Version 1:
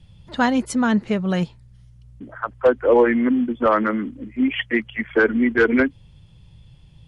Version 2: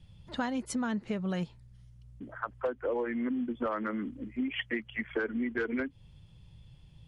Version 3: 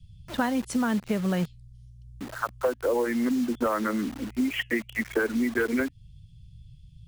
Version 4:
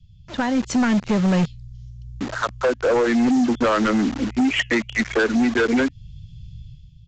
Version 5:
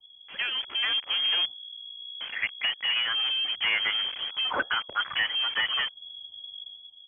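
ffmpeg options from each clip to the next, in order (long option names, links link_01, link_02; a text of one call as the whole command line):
ffmpeg -i in.wav -af "acompressor=threshold=-23dB:ratio=6,volume=-6.5dB" out.wav
ffmpeg -i in.wav -filter_complex "[0:a]acrossover=split=180|2900[link_01][link_02][link_03];[link_02]acrusher=bits=7:mix=0:aa=0.000001[link_04];[link_03]flanger=delay=4.6:depth=9.2:regen=68:speed=0.96:shape=triangular[link_05];[link_01][link_04][link_05]amix=inputs=3:normalize=0,volume=6.5dB" out.wav
ffmpeg -i in.wav -af "dynaudnorm=framelen=110:gausssize=9:maxgain=11dB,aresample=16000,asoftclip=type=hard:threshold=-15dB,aresample=44100" out.wav
ffmpeg -i in.wav -af "equalizer=frequency=330:width_type=o:width=1.5:gain=-9,lowpass=frequency=2900:width_type=q:width=0.5098,lowpass=frequency=2900:width_type=q:width=0.6013,lowpass=frequency=2900:width_type=q:width=0.9,lowpass=frequency=2900:width_type=q:width=2.563,afreqshift=-3400,volume=-4dB" out.wav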